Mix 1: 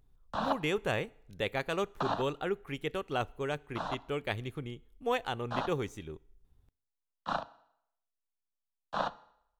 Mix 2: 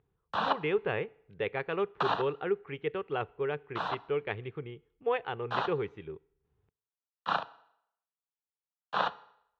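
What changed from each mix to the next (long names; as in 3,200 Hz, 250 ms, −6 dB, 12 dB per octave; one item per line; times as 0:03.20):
background: remove head-to-tape spacing loss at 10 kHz 41 dB
master: add loudspeaker in its box 110–2,800 Hz, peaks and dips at 250 Hz −10 dB, 430 Hz +7 dB, 620 Hz −5 dB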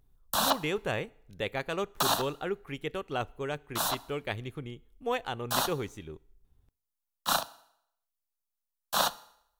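master: remove loudspeaker in its box 110–2,800 Hz, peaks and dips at 250 Hz −10 dB, 430 Hz +7 dB, 620 Hz −5 dB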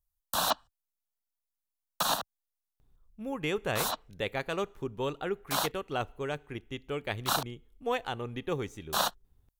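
speech: entry +2.80 s
background: send off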